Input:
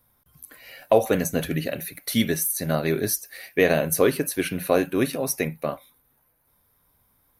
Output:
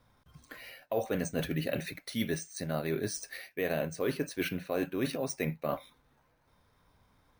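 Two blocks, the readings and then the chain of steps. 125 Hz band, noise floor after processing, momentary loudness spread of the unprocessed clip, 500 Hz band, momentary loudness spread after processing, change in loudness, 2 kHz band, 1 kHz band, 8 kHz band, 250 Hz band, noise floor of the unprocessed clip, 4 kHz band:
-7.5 dB, -70 dBFS, 10 LU, -11.0 dB, 7 LU, -10.5 dB, -9.5 dB, -11.0 dB, -13.0 dB, -9.0 dB, -66 dBFS, -9.0 dB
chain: reverse; compression 6:1, threshold -32 dBFS, peak gain reduction 19 dB; reverse; careless resampling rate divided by 3×, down filtered, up hold; trim +2.5 dB

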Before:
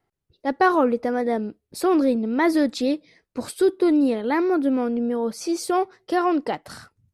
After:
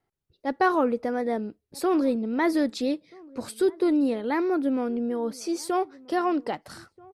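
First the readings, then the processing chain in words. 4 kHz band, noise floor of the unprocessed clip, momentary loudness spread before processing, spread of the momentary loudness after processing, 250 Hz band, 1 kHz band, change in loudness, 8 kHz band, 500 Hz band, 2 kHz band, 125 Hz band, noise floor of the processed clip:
-4.0 dB, -80 dBFS, 11 LU, 12 LU, -4.0 dB, -4.0 dB, -4.0 dB, -4.0 dB, -4.0 dB, -4.0 dB, no reading, -79 dBFS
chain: echo from a far wall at 220 m, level -24 dB; trim -4 dB

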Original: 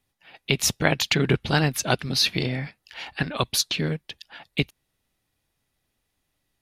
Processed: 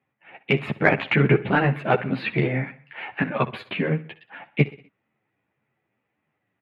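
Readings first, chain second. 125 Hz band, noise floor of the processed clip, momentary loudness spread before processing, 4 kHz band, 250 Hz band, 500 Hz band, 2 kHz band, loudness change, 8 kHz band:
+2.5 dB, -78 dBFS, 15 LU, -12.0 dB, +3.0 dB, +4.5 dB, +3.0 dB, +1.0 dB, under -35 dB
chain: elliptic band-pass 120–2300 Hz, stop band 40 dB; in parallel at -10 dB: saturation -12.5 dBFS, distortion -15 dB; on the sum: feedback delay 63 ms, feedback 48%, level -17 dB; three-phase chorus; trim +5.5 dB

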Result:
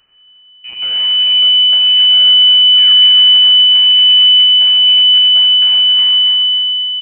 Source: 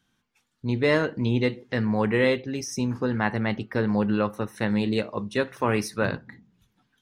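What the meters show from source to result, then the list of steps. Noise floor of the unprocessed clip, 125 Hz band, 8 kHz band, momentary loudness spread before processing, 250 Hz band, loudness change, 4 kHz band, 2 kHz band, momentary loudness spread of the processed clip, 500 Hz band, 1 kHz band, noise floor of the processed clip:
-74 dBFS, under -20 dB, under -40 dB, 6 LU, under -25 dB, +20.5 dB, +38.5 dB, 0.0 dB, 7 LU, under -15 dB, no reading, -44 dBFS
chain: high-pass 160 Hz 24 dB/octave; dynamic bell 2.2 kHz, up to +5 dB, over -42 dBFS, Q 0.95; reverse; upward compressor, threshold -40 dBFS; reverse; peak limiter -14.5 dBFS, peak gain reduction 8.5 dB; compression, threshold -29 dBFS, peak gain reduction 9 dB; crackle 220 per s -52 dBFS; painted sound rise, 2.72–2.95 s, 660–1800 Hz -33 dBFS; full-wave rectifier; on a send: feedback delay 273 ms, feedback 48%, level -6 dB; on the sum: algorithmic reverb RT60 1.6 s, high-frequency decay 0.9×, pre-delay 10 ms, DRR 1 dB; frequency inversion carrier 3 kHz

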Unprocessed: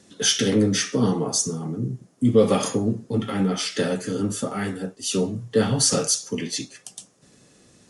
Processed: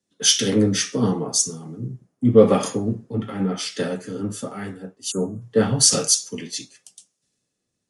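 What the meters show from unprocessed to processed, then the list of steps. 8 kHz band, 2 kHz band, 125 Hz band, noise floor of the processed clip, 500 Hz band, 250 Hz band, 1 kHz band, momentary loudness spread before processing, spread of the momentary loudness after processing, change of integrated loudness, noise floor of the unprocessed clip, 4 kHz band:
+3.5 dB, -1.5 dB, 0.0 dB, -78 dBFS, +2.0 dB, +0.5 dB, +0.5 dB, 11 LU, 17 LU, +2.5 dB, -56 dBFS, +2.5 dB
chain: spectral selection erased 5.11–5.42 s, 1.6–6.4 kHz; three bands expanded up and down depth 70%; trim -1 dB

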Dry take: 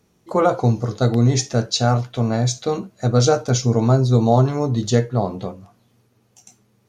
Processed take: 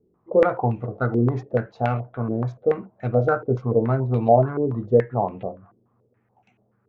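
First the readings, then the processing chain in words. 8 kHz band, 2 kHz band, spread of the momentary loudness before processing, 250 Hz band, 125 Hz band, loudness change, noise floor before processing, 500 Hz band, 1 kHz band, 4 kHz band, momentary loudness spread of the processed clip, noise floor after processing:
under -35 dB, -1.0 dB, 8 LU, -5.0 dB, -6.5 dB, -3.5 dB, -62 dBFS, 0.0 dB, -1.5 dB, under -25 dB, 9 LU, -68 dBFS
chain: local Wiener filter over 9 samples; step-sequenced low-pass 7 Hz 390–2500 Hz; trim -7 dB

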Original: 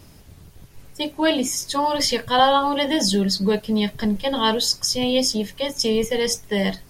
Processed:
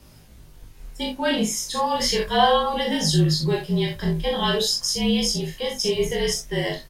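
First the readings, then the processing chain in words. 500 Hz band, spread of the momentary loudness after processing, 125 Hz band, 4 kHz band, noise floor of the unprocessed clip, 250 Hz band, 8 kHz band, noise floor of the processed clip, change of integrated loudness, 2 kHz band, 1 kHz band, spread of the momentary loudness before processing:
-1.5 dB, 7 LU, +6.5 dB, -1.5 dB, -47 dBFS, -3.0 dB, -1.5 dB, -48 dBFS, -1.5 dB, -1.0 dB, -2.0 dB, 6 LU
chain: early reflections 40 ms -4.5 dB, 61 ms -9 dB; chorus 0.36 Hz, delay 19.5 ms, depth 4.4 ms; frequency shift -39 Hz

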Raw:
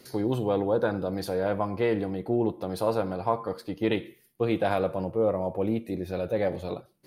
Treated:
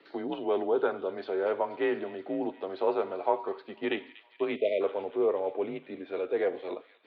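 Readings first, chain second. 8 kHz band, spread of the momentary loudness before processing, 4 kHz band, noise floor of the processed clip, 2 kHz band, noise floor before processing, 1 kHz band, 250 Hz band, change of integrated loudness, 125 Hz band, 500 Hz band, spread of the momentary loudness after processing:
no reading, 6 LU, -3.5 dB, -59 dBFS, -1.5 dB, -62 dBFS, -2.5 dB, -6.5 dB, -3.0 dB, -21.5 dB, -1.5 dB, 8 LU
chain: feedback echo behind a high-pass 240 ms, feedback 76%, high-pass 2.7 kHz, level -13 dB; mistuned SSB -79 Hz 430–3500 Hz; spectral selection erased 4.56–4.81 s, 680–1900 Hz

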